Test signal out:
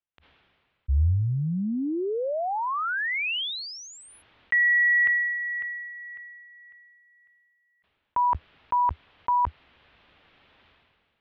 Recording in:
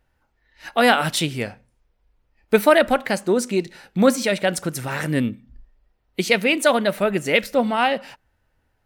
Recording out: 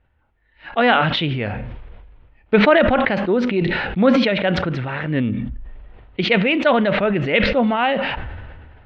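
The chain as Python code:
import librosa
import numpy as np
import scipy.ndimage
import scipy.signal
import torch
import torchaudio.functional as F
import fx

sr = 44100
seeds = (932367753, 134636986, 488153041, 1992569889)

y = scipy.signal.sosfilt(scipy.signal.butter(6, 3400.0, 'lowpass', fs=sr, output='sos'), x)
y = fx.peak_eq(y, sr, hz=77.0, db=8.0, octaves=0.86)
y = fx.sustainer(y, sr, db_per_s=31.0)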